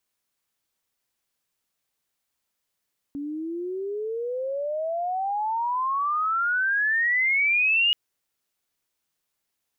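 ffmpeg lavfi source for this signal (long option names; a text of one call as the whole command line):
ffmpeg -f lavfi -i "aevalsrc='pow(10,(-29+11.5*t/4.78)/20)*sin(2*PI*280*4.78/log(2900/280)*(exp(log(2900/280)*t/4.78)-1))':duration=4.78:sample_rate=44100" out.wav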